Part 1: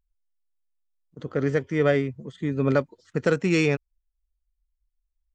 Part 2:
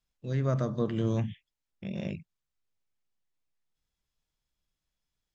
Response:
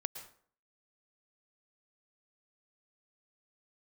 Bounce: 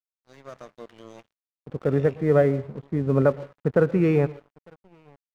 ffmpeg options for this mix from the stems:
-filter_complex "[0:a]lowpass=1k,adelay=500,volume=2dB,asplit=3[a][b][c];[b]volume=-6dB[d];[c]volume=-23dB[e];[1:a]highpass=340,volume=-7.5dB,asplit=2[f][g];[g]volume=-7.5dB[h];[2:a]atrim=start_sample=2205[i];[d][h]amix=inputs=2:normalize=0[j];[j][i]afir=irnorm=-1:irlink=0[k];[e]aecho=0:1:902:1[l];[a][f][k][l]amix=inputs=4:normalize=0,equalizer=f=280:t=o:w=1.2:g=-4.5,aeval=exprs='sgn(val(0))*max(abs(val(0))-0.00501,0)':c=same"

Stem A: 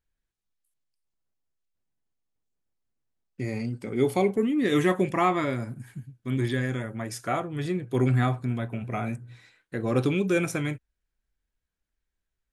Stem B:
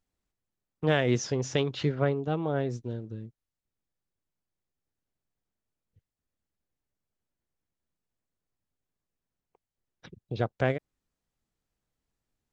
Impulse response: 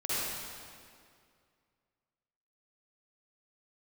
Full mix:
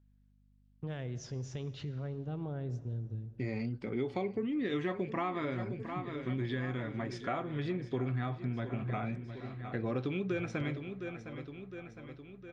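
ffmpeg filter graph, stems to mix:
-filter_complex "[0:a]lowpass=f=4.7k:w=0.5412,lowpass=f=4.7k:w=1.3066,volume=-3.5dB,asplit=2[a][b];[b]volume=-14dB[c];[1:a]equalizer=f=100:t=o:w=1.9:g=14,alimiter=limit=-18.5dB:level=0:latency=1:release=102,aeval=exprs='val(0)+0.00251*(sin(2*PI*50*n/s)+sin(2*PI*2*50*n/s)/2+sin(2*PI*3*50*n/s)/3+sin(2*PI*4*50*n/s)/4+sin(2*PI*5*50*n/s)/5)':c=same,volume=-12.5dB,asplit=2[d][e];[e]volume=-22dB[f];[2:a]atrim=start_sample=2205[g];[f][g]afir=irnorm=-1:irlink=0[h];[c]aecho=0:1:710|1420|2130|2840|3550|4260|4970|5680|6390:1|0.59|0.348|0.205|0.121|0.0715|0.0422|0.0249|0.0147[i];[a][d][h][i]amix=inputs=4:normalize=0,acompressor=threshold=-31dB:ratio=6"

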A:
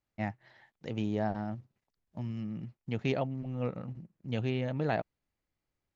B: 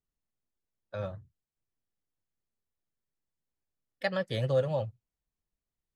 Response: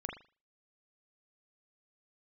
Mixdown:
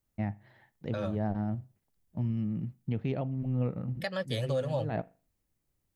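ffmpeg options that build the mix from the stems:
-filter_complex "[0:a]lowpass=4k,lowshelf=f=410:g=11,volume=-4dB,asplit=2[a][b];[b]volume=-17dB[c];[1:a]highshelf=f=5.5k:g=10.5,acontrast=34,volume=-4dB,asplit=2[d][e];[e]apad=whole_len=262565[f];[a][f]sidechaincompress=threshold=-45dB:ratio=4:attack=16:release=118[g];[2:a]atrim=start_sample=2205[h];[c][h]afir=irnorm=-1:irlink=0[i];[g][d][i]amix=inputs=3:normalize=0,alimiter=limit=-22dB:level=0:latency=1:release=275"

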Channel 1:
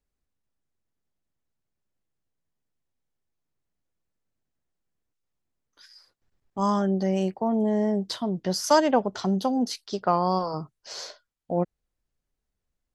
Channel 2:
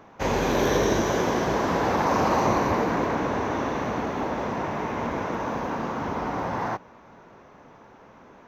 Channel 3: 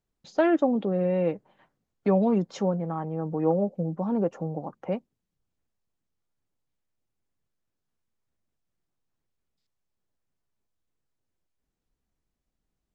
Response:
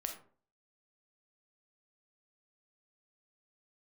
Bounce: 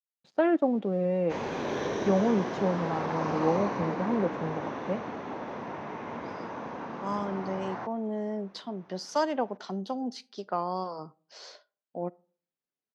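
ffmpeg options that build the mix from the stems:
-filter_complex "[0:a]highpass=180,adelay=450,volume=-8.5dB,asplit=2[a][b];[b]volume=-17dB[c];[1:a]adelay=1100,volume=-9dB[d];[2:a]highshelf=f=2.2k:g=-3.5,aeval=exprs='sgn(val(0))*max(abs(val(0))-0.002,0)':c=same,volume=-2.5dB,asplit=2[e][f];[f]volume=-21.5dB[g];[3:a]atrim=start_sample=2205[h];[c][g]amix=inputs=2:normalize=0[i];[i][h]afir=irnorm=-1:irlink=0[j];[a][d][e][j]amix=inputs=4:normalize=0,highpass=120,lowpass=5k"

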